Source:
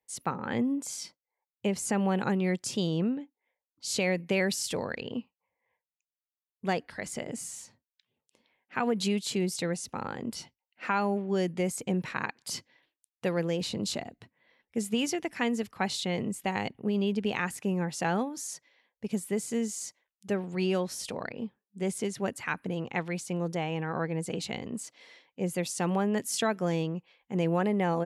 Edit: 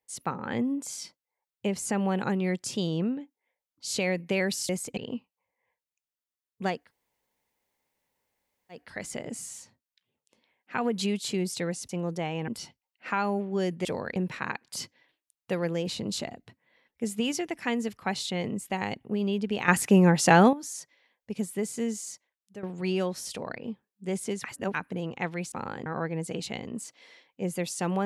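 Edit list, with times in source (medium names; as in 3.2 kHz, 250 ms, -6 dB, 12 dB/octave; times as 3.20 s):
4.69–5.00 s: swap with 11.62–11.90 s
6.83 s: insert room tone 2.01 s, crossfade 0.24 s
9.91–10.25 s: swap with 23.26–23.85 s
17.42–18.27 s: gain +11 dB
19.68–20.37 s: fade out, to -14.5 dB
22.18–22.48 s: reverse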